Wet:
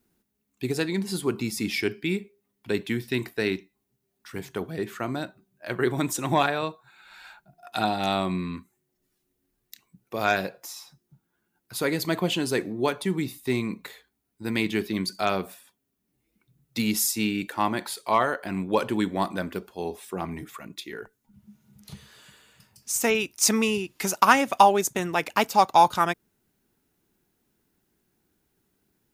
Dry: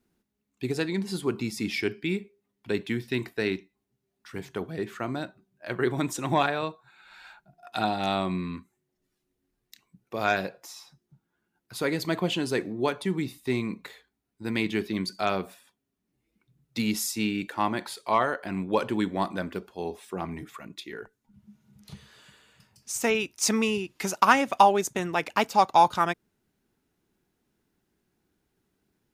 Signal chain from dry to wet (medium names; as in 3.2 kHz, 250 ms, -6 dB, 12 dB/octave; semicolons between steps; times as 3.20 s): treble shelf 10 kHz +11 dB; trim +1.5 dB